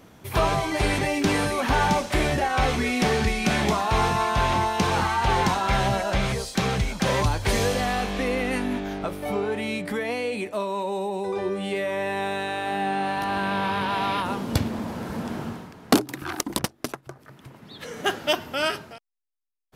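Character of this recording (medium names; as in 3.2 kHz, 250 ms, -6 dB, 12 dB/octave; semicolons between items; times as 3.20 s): noise floor -55 dBFS; spectral tilt -4.5 dB/octave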